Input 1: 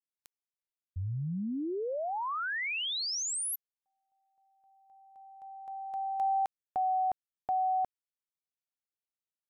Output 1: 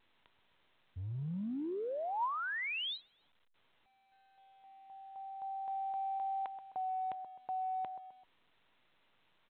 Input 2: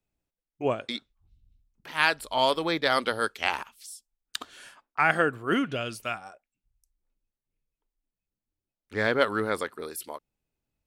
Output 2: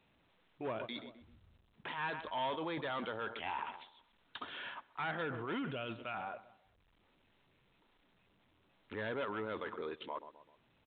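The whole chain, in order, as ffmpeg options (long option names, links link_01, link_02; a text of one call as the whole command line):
ffmpeg -i in.wav -filter_complex "[0:a]asplit=2[link_01][link_02];[link_02]adelay=129,lowpass=frequency=1400:poles=1,volume=-22dB,asplit=2[link_03][link_04];[link_04]adelay=129,lowpass=frequency=1400:poles=1,volume=0.47,asplit=2[link_05][link_06];[link_06]adelay=129,lowpass=frequency=1400:poles=1,volume=0.47[link_07];[link_03][link_05][link_07]amix=inputs=3:normalize=0[link_08];[link_01][link_08]amix=inputs=2:normalize=0,volume=22.5dB,asoftclip=hard,volume=-22.5dB,areverse,acompressor=threshold=-42dB:ratio=12:attack=0.4:release=32:knee=6:detection=rms,areverse,highpass=96,equalizer=frequency=960:width_type=o:width=0.21:gain=6.5,volume=6dB" -ar 8000 -c:a pcm_alaw out.wav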